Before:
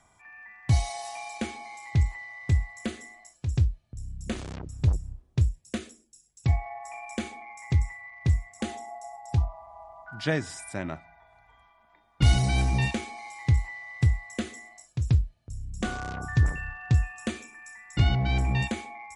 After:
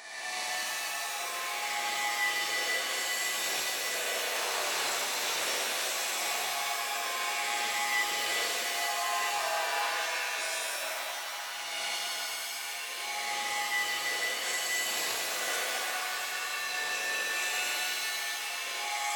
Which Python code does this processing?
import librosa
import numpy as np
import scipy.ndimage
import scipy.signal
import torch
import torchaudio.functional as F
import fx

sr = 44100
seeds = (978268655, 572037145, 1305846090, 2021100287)

y = fx.spec_swells(x, sr, rise_s=1.76)
y = scipy.signal.sosfilt(scipy.signal.butter(4, 560.0, 'highpass', fs=sr, output='sos'), y)
y = fx.over_compress(y, sr, threshold_db=-42.0, ratio=-1.0)
y = fx.echo_stepped(y, sr, ms=434, hz=1400.0, octaves=0.7, feedback_pct=70, wet_db=-4.0)
y = fx.rev_shimmer(y, sr, seeds[0], rt60_s=2.6, semitones=7, shimmer_db=-2, drr_db=-3.5)